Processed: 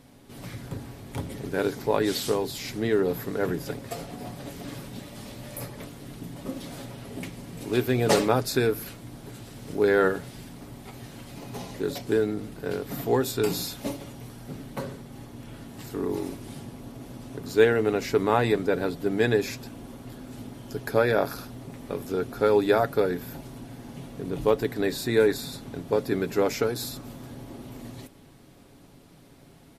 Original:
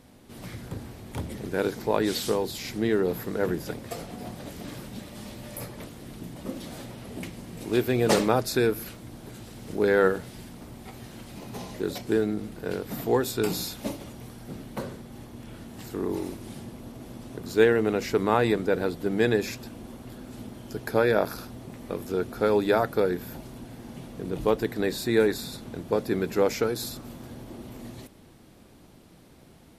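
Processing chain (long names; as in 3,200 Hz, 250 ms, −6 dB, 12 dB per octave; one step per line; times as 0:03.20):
comb filter 7.2 ms, depth 37%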